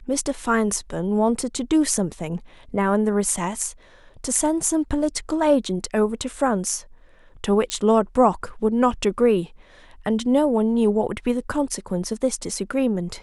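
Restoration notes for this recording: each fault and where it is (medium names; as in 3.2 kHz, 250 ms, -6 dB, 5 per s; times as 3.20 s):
7.70 s: pop -9 dBFS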